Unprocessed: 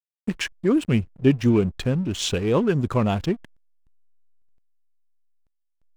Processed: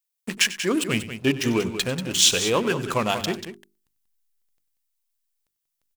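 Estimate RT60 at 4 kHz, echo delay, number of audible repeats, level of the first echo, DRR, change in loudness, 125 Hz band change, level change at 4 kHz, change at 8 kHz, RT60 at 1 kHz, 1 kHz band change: no reverb, 95 ms, 2, -16.0 dB, no reverb, +0.5 dB, -8.0 dB, +9.5 dB, +12.5 dB, no reverb, +3.0 dB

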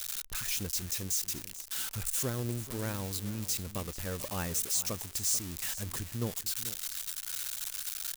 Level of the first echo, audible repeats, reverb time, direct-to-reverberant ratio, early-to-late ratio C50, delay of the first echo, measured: -15.0 dB, 1, no reverb, no reverb, no reverb, 439 ms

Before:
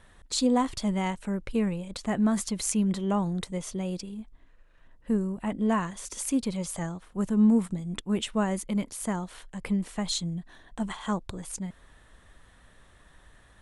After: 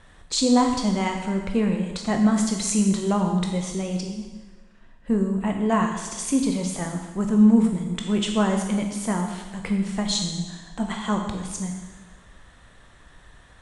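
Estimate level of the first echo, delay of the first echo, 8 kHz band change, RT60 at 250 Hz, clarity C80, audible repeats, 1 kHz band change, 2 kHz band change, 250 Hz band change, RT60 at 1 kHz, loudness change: no echo, no echo, +5.0 dB, 1.4 s, 7.0 dB, no echo, +6.0 dB, +6.0 dB, +5.5 dB, 1.3 s, +5.5 dB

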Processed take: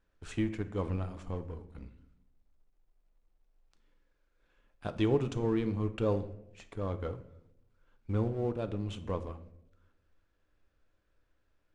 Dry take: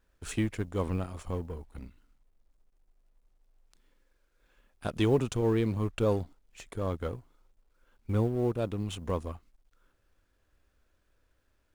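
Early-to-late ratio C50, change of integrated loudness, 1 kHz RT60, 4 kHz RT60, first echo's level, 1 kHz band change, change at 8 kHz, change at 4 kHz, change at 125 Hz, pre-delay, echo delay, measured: 14.0 dB, -3.0 dB, 0.70 s, 0.50 s, no echo, -3.0 dB, under -10 dB, -5.0 dB, -3.0 dB, 6 ms, no echo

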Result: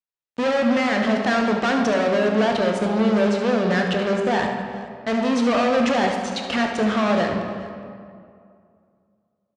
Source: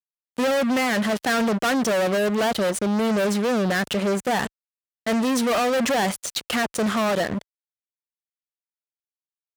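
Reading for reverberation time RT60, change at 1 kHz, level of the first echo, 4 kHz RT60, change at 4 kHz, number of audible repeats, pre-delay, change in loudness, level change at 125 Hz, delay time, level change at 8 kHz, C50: 2.3 s, +2.0 dB, -9.5 dB, 1.3 s, -0.5 dB, 2, 11 ms, +1.5 dB, +2.0 dB, 72 ms, -8.0 dB, 3.0 dB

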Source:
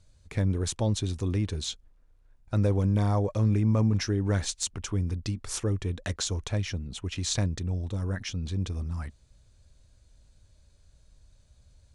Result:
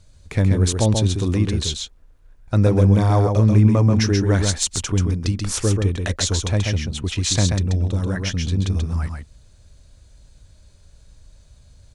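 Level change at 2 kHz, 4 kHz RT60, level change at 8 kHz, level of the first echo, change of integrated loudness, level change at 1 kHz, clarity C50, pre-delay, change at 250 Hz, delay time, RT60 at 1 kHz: +10.0 dB, no reverb, +10.0 dB, -4.5 dB, +9.5 dB, +10.0 dB, no reverb, no reverb, +9.5 dB, 134 ms, no reverb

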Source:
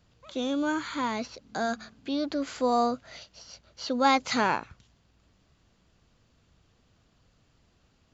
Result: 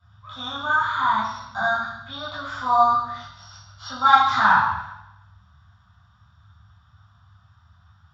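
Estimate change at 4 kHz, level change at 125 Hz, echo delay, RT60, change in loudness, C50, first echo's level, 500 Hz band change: +4.5 dB, +9.0 dB, no echo, 0.85 s, +8.0 dB, 2.0 dB, no echo, -2.0 dB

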